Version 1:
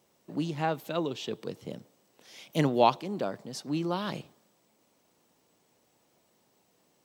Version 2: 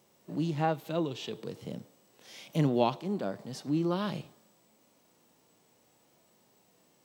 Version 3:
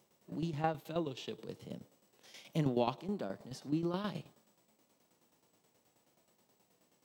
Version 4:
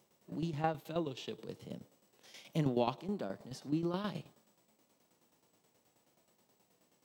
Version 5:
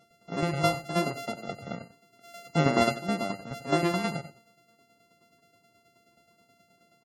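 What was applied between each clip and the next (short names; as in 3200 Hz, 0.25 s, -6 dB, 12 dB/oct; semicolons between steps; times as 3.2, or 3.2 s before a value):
harmonic-percussive split percussive -11 dB; in parallel at -0.5 dB: compressor, threshold -39 dBFS, peak gain reduction 16 dB
tremolo saw down 9.4 Hz, depth 70%; gain -2.5 dB
nothing audible
sample sorter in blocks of 64 samples; echo 91 ms -13 dB; loudest bins only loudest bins 64; gain +9 dB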